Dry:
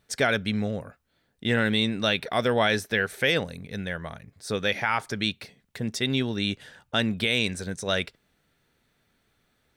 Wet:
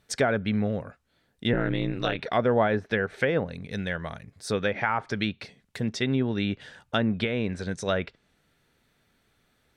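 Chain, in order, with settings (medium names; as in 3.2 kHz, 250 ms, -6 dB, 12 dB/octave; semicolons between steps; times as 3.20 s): 1.53–2.19 s: ring modulator 86 Hz; low-pass that closes with the level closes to 1.2 kHz, closed at -20.5 dBFS; trim +1.5 dB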